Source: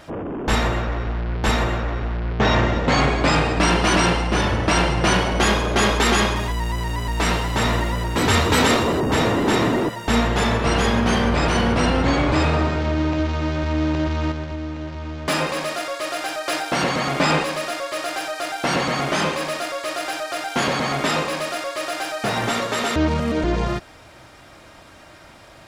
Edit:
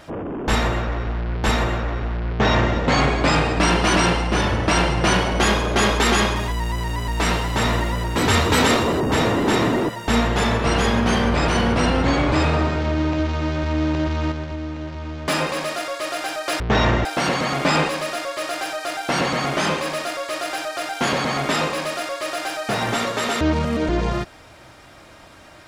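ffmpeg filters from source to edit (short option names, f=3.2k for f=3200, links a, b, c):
-filter_complex "[0:a]asplit=3[a][b][c];[a]atrim=end=16.602[d];[b]atrim=start=2.298:end=2.752[e];[c]atrim=start=16.598[f];[d][e]acrossfade=d=0.004:c1=hsin:c2=hsin[g];[g][f]acrossfade=d=0.004:c1=hsin:c2=hsin"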